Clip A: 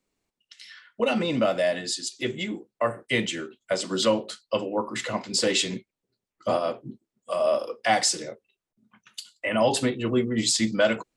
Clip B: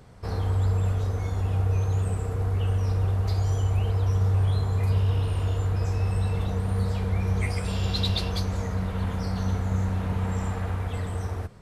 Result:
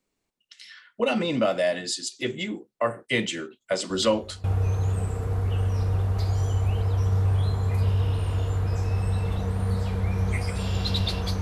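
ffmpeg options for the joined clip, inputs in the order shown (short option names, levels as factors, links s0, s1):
-filter_complex "[1:a]asplit=2[s0][s1];[0:a]apad=whole_dur=11.41,atrim=end=11.41,atrim=end=4.442[s2];[s1]atrim=start=1.528:end=8.5[s3];[s0]atrim=start=0.99:end=1.53,asetpts=PTS-STARTPTS,volume=0.126,afade=t=in:d=0.004:c=hsin,afade=t=out:st=0.536:d=0.004:c=hsin,adelay=3900[s4];[s2][s3]acrossfade=d=0.004:c1=hsin:c2=hsin[s5];[s5][s4]amix=inputs=2:normalize=0"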